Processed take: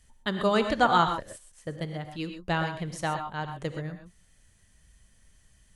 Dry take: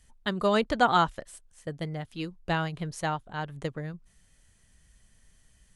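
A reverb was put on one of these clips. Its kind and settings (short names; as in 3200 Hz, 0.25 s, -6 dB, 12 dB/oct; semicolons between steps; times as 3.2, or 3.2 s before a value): non-linear reverb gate 0.15 s rising, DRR 6.5 dB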